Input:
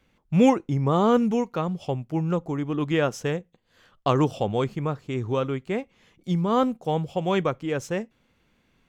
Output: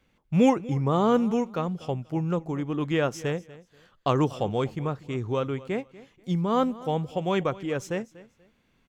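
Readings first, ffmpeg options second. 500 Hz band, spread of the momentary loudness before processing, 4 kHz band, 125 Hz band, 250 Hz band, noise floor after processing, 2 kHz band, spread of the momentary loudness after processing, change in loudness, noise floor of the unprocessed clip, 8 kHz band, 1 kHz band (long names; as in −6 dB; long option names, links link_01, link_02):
−2.0 dB, 11 LU, −2.0 dB, −2.0 dB, −2.0 dB, −67 dBFS, −2.0 dB, 11 LU, −2.0 dB, −68 dBFS, −2.0 dB, −2.0 dB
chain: -af "aecho=1:1:241|482:0.112|0.0269,volume=-2dB"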